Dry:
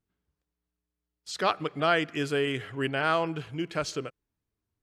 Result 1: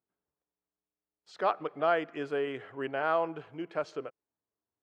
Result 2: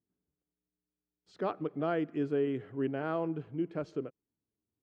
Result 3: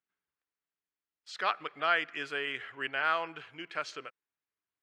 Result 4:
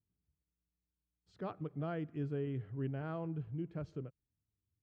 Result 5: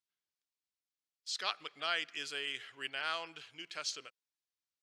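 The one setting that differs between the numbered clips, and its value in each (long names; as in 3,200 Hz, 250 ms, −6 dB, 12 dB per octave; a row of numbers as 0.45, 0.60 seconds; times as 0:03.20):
resonant band-pass, frequency: 700, 280, 1,800, 100, 4,700 Hertz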